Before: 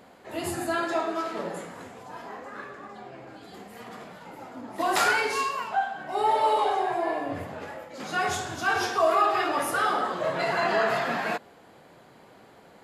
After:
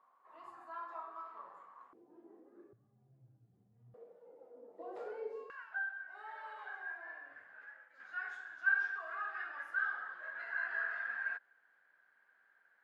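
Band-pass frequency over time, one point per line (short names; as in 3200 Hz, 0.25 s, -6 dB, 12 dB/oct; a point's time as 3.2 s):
band-pass, Q 17
1100 Hz
from 1.93 s 340 Hz
from 2.73 s 120 Hz
from 3.94 s 480 Hz
from 5.5 s 1600 Hz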